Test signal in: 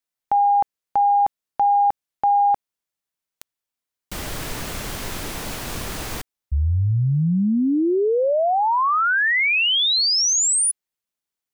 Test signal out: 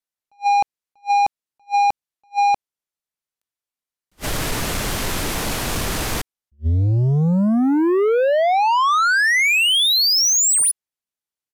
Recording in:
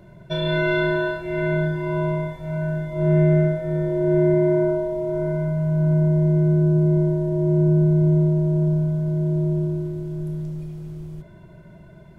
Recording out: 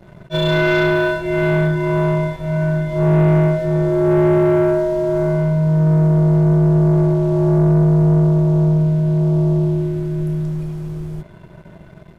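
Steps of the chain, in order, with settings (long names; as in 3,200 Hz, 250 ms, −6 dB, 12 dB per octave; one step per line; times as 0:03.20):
downsampling to 32,000 Hz
leveller curve on the samples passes 2
level that may rise only so fast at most 470 dB per second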